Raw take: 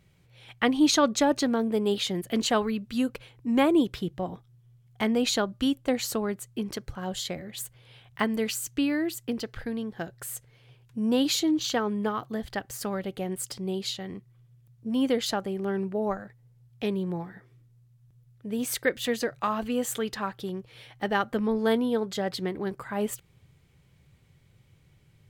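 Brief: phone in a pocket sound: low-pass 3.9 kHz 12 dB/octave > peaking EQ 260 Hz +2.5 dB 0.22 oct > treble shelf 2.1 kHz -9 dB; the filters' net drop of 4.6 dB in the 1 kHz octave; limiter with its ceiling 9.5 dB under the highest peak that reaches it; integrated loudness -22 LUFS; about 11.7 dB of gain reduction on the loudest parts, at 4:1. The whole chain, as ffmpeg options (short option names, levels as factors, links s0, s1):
-af "equalizer=f=1000:t=o:g=-4,acompressor=threshold=0.0251:ratio=4,alimiter=level_in=1.5:limit=0.0631:level=0:latency=1,volume=0.668,lowpass=3900,equalizer=f=260:t=o:w=0.22:g=2.5,highshelf=f=2100:g=-9,volume=6.31"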